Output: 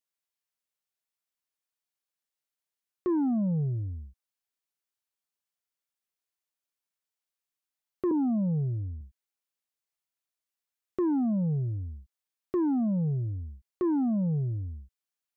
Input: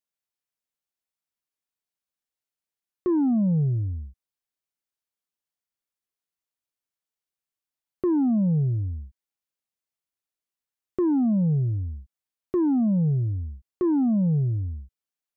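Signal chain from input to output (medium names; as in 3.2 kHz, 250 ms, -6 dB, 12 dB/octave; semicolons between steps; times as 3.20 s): 8.11–9.01 s: steep low-pass 1.4 kHz 96 dB/octave; bass shelf 450 Hz -6.5 dB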